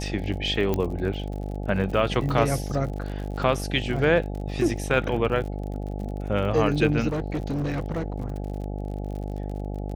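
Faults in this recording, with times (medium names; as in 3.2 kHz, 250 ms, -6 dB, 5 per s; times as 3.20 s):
buzz 50 Hz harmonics 17 -31 dBFS
crackle 48 per s -34 dBFS
0.74 s: pop -12 dBFS
2.29 s: dropout 2.7 ms
7.08–8.42 s: clipped -23.5 dBFS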